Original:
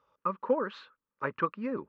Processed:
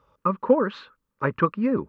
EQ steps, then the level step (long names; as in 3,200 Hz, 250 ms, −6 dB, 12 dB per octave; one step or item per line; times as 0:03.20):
low-shelf EQ 130 Hz +11.5 dB
low-shelf EQ 420 Hz +4.5 dB
+6.0 dB